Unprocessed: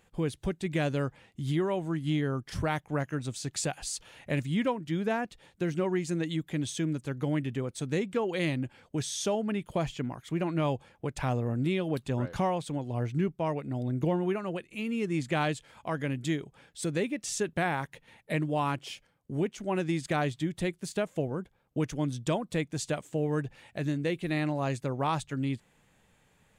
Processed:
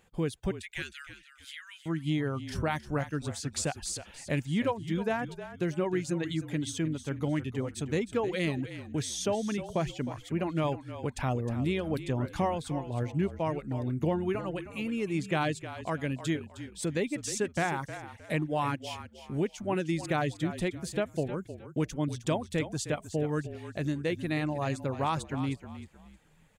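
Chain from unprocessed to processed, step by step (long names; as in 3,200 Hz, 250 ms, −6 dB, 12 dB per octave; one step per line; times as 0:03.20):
0:00.51–0:01.86: Butterworth high-pass 1,500 Hz 48 dB per octave
reverb reduction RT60 0.51 s
echo with shifted repeats 311 ms, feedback 30%, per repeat −37 Hz, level −12 dB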